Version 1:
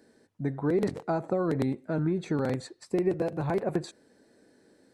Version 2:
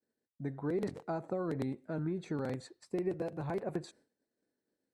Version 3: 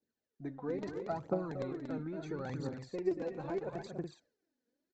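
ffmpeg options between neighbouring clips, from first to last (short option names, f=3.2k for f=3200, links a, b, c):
-af "agate=range=-33dB:threshold=-49dB:ratio=3:detection=peak,volume=-8dB"
-af "aecho=1:1:233.2|285.7:0.447|0.355,aphaser=in_gain=1:out_gain=1:delay=4.3:decay=0.61:speed=0.75:type=triangular,aresample=16000,aresample=44100,volume=-4dB"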